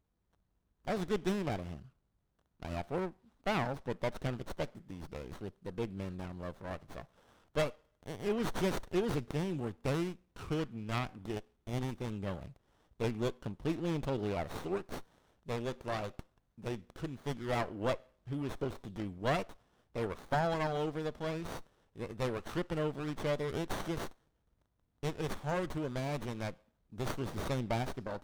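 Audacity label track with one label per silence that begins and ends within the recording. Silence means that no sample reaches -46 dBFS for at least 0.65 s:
1.820000	2.620000	silence
24.110000	25.030000	silence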